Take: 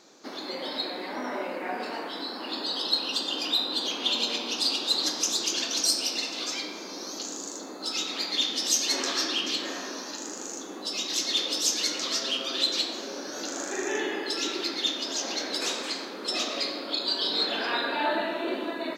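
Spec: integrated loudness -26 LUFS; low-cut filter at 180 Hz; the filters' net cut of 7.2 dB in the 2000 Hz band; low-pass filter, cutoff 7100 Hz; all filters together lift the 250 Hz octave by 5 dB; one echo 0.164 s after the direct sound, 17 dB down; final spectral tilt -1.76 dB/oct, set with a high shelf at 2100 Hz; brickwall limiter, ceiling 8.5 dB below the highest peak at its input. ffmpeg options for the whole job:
-af "highpass=180,lowpass=7.1k,equalizer=f=250:t=o:g=7.5,equalizer=f=2k:t=o:g=-8,highshelf=f=2.1k:g=-3,alimiter=limit=-22dB:level=0:latency=1,aecho=1:1:164:0.141,volume=6dB"

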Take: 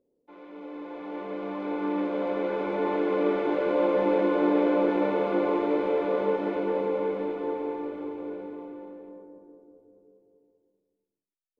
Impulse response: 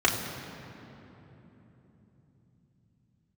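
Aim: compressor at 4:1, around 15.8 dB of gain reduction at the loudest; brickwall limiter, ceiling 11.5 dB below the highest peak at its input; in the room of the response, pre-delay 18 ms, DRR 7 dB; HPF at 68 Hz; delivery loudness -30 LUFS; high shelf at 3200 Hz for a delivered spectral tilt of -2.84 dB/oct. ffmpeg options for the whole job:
-filter_complex "[0:a]highpass=68,highshelf=f=3.2k:g=-8.5,acompressor=threshold=-40dB:ratio=4,alimiter=level_in=16dB:limit=-24dB:level=0:latency=1,volume=-16dB,asplit=2[a][b];[1:a]atrim=start_sample=2205,adelay=18[c];[b][c]afir=irnorm=-1:irlink=0,volume=-22dB[d];[a][d]amix=inputs=2:normalize=0,volume=16.5dB"

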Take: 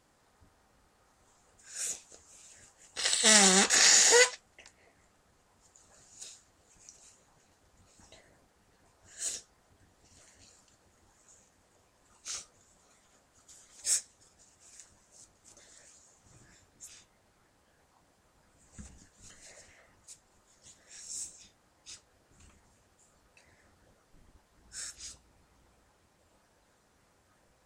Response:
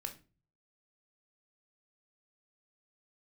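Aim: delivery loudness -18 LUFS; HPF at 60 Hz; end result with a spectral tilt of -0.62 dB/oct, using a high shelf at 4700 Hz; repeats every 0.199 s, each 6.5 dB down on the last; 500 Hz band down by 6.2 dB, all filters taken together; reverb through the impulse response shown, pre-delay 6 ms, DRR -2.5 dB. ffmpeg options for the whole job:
-filter_complex "[0:a]highpass=60,equalizer=f=500:t=o:g=-7,highshelf=f=4.7k:g=-6.5,aecho=1:1:199|398|597|796|995|1194:0.473|0.222|0.105|0.0491|0.0231|0.0109,asplit=2[a][b];[1:a]atrim=start_sample=2205,adelay=6[c];[b][c]afir=irnorm=-1:irlink=0,volume=4dB[d];[a][d]amix=inputs=2:normalize=0,volume=6dB"

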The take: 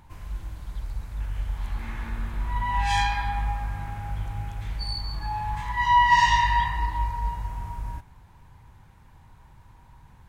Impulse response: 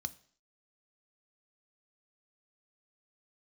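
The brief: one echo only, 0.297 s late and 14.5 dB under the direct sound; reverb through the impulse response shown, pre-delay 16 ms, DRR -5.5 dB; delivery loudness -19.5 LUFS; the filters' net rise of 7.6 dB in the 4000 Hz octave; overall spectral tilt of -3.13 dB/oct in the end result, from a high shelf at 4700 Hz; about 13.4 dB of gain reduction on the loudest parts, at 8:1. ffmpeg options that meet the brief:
-filter_complex "[0:a]equalizer=f=4k:t=o:g=7.5,highshelf=f=4.7k:g=5.5,acompressor=threshold=-27dB:ratio=8,aecho=1:1:297:0.188,asplit=2[a][b];[1:a]atrim=start_sample=2205,adelay=16[c];[b][c]afir=irnorm=-1:irlink=0,volume=7dB[d];[a][d]amix=inputs=2:normalize=0,volume=5dB"

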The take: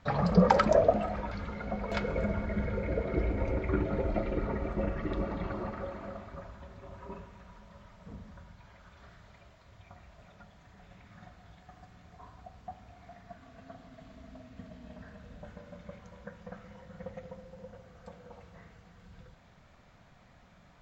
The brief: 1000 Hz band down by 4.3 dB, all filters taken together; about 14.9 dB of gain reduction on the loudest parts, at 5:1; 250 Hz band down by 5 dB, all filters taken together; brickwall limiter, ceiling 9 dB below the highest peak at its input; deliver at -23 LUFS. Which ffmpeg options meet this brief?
-af "equalizer=f=250:t=o:g=-7.5,equalizer=f=1k:t=o:g=-5.5,acompressor=threshold=-38dB:ratio=5,volume=25dB,alimiter=limit=-9dB:level=0:latency=1"

